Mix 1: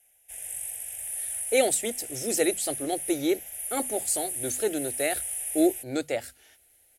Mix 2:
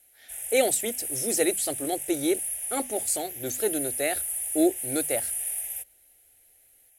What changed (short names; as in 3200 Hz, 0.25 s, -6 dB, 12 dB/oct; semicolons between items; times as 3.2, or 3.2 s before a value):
speech: entry -1.00 s; background: remove LPF 11000 Hz 12 dB/oct